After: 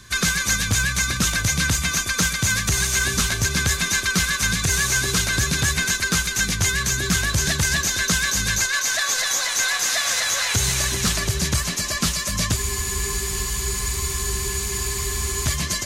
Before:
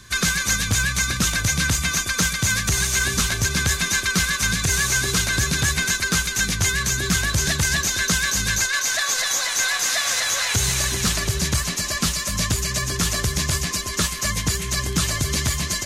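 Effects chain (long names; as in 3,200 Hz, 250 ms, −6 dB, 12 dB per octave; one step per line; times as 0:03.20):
feedback echo with a high-pass in the loop 123 ms, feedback 56%, level −18.5 dB
frozen spectrum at 0:12.59, 2.87 s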